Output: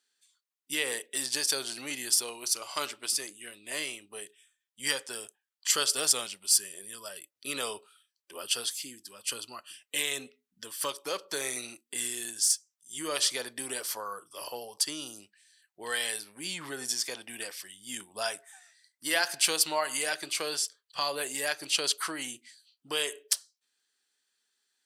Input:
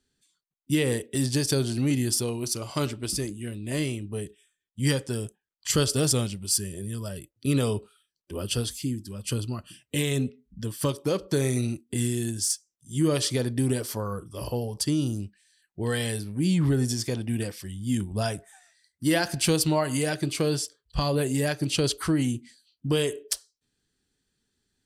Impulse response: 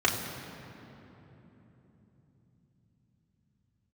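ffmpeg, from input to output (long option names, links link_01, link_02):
-af "highpass=880,volume=1.5dB"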